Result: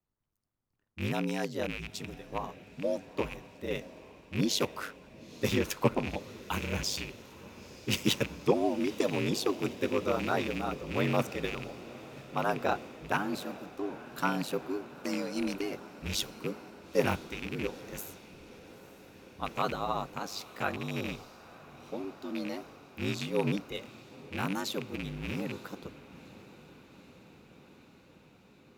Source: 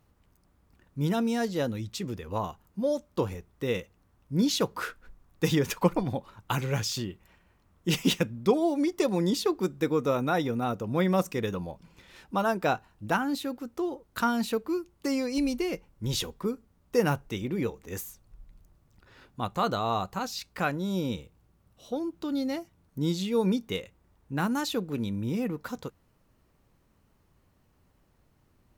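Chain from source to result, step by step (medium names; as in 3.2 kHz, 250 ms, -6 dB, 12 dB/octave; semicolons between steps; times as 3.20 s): rattle on loud lows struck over -33 dBFS, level -23 dBFS; bass shelf 95 Hz -8.5 dB; ring modulator 50 Hz; on a send: echo that smears into a reverb 922 ms, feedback 78%, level -14 dB; on the sum: three bands expanded up and down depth 40%; trim -1.5 dB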